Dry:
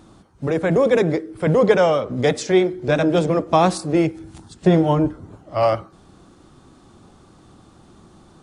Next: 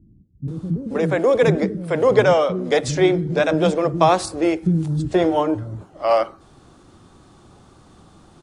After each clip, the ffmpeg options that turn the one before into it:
-filter_complex "[0:a]acrossover=split=250[a][b];[b]adelay=480[c];[a][c]amix=inputs=2:normalize=0,volume=1dB"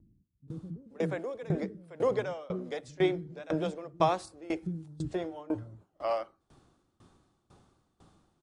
-af "aeval=exprs='val(0)*pow(10,-22*if(lt(mod(2*n/s,1),2*abs(2)/1000),1-mod(2*n/s,1)/(2*abs(2)/1000),(mod(2*n/s,1)-2*abs(2)/1000)/(1-2*abs(2)/1000))/20)':c=same,volume=-8.5dB"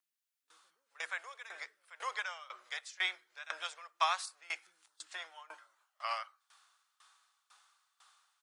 -af "highpass=f=1.2k:w=0.5412,highpass=f=1.2k:w=1.3066,volume=5.5dB"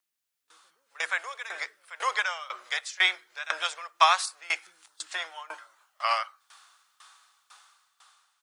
-af "dynaudnorm=f=120:g=13:m=6dB,volume=5dB"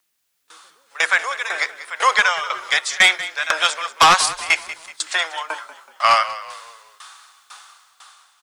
-filter_complex "[0:a]aeval=exprs='0.531*sin(PI/2*2.82*val(0)/0.531)':c=same,asplit=5[a][b][c][d][e];[b]adelay=188,afreqshift=-36,volume=-15dB[f];[c]adelay=376,afreqshift=-72,volume=-22.7dB[g];[d]adelay=564,afreqshift=-108,volume=-30.5dB[h];[e]adelay=752,afreqshift=-144,volume=-38.2dB[i];[a][f][g][h][i]amix=inputs=5:normalize=0"

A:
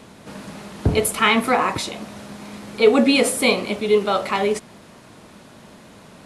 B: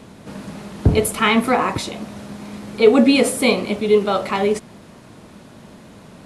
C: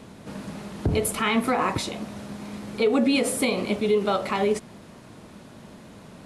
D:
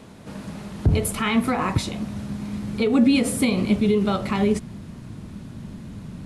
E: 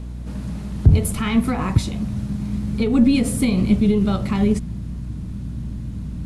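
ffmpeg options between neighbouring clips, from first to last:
-af "lowshelf=f=450:g=6,volume=-1dB"
-af "alimiter=limit=-10.5dB:level=0:latency=1:release=107,volume=-3dB"
-af "asubboost=boost=6:cutoff=220"
-af "aeval=exprs='0.398*(cos(1*acos(clip(val(0)/0.398,-1,1)))-cos(1*PI/2))+0.0141*(cos(4*acos(clip(val(0)/0.398,-1,1)))-cos(4*PI/2))':c=same,aeval=exprs='val(0)+0.0158*(sin(2*PI*60*n/s)+sin(2*PI*2*60*n/s)/2+sin(2*PI*3*60*n/s)/3+sin(2*PI*4*60*n/s)/4+sin(2*PI*5*60*n/s)/5)':c=same,bass=f=250:g=10,treble=f=4k:g=3,volume=-3dB"

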